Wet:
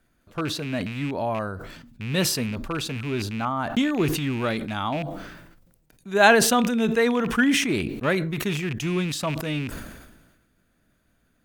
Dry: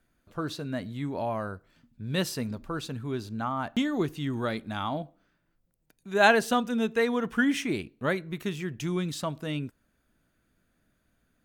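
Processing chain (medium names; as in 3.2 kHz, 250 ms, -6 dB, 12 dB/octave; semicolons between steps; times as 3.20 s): rattle on loud lows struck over -36 dBFS, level -30 dBFS; decay stretcher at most 46 dB/s; trim +4 dB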